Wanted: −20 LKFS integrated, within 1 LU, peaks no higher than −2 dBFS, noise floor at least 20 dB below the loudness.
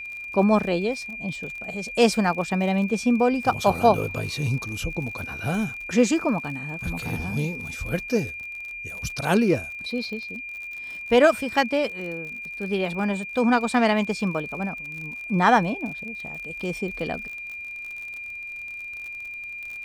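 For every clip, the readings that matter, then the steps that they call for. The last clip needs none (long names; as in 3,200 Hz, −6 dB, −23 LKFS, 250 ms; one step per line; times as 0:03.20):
crackle rate 45 per second; interfering tone 2,400 Hz; level of the tone −33 dBFS; integrated loudness −25.0 LKFS; sample peak −4.5 dBFS; target loudness −20.0 LKFS
→ click removal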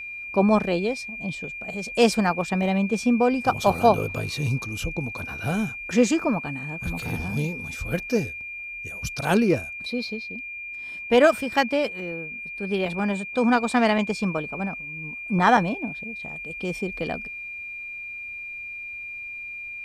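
crackle rate 0.25 per second; interfering tone 2,400 Hz; level of the tone −33 dBFS
→ notch filter 2,400 Hz, Q 30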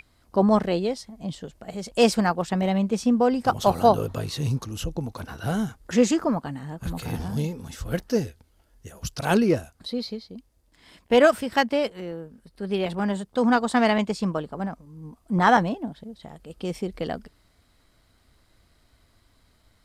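interfering tone none found; integrated loudness −24.5 LKFS; sample peak −5.0 dBFS; target loudness −20.0 LKFS
→ level +4.5 dB
brickwall limiter −2 dBFS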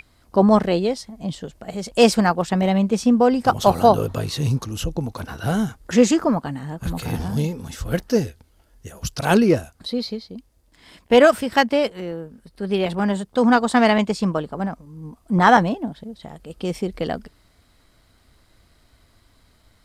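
integrated loudness −20.0 LKFS; sample peak −2.0 dBFS; background noise floor −59 dBFS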